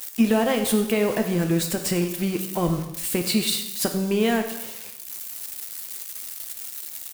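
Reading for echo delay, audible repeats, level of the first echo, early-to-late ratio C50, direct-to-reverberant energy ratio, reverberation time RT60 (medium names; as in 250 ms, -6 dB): 95 ms, 1, -15.0 dB, 7.5 dB, 4.5 dB, 0.95 s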